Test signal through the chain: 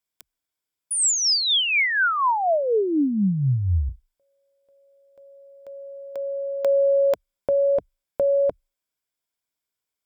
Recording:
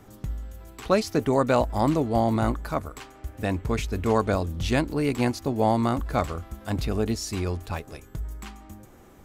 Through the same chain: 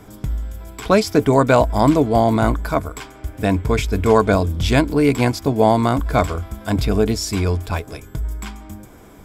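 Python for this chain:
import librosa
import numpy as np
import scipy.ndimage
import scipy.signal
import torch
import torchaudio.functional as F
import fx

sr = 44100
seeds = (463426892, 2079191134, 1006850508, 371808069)

y = fx.ripple_eq(x, sr, per_octave=1.7, db=6)
y = y * 10.0 ** (7.5 / 20.0)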